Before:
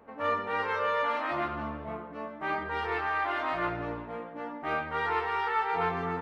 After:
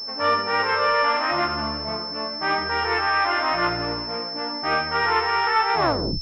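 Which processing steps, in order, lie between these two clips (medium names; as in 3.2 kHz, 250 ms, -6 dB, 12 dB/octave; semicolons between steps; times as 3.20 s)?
tape stop on the ending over 0.46 s; treble shelf 2.1 kHz +10.5 dB; class-D stage that switches slowly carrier 5.3 kHz; trim +6.5 dB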